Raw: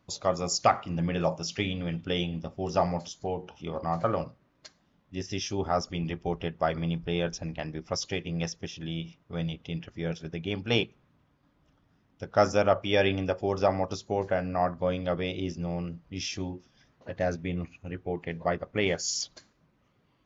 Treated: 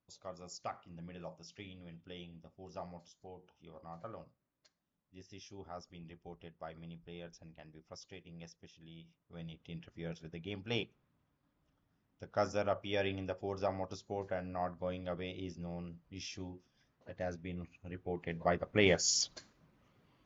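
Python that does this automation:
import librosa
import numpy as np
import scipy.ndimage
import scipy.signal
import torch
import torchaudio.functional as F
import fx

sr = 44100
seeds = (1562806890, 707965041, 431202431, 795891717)

y = fx.gain(x, sr, db=fx.line((9.02, -20.0), (9.83, -11.0), (17.61, -11.0), (18.89, -0.5)))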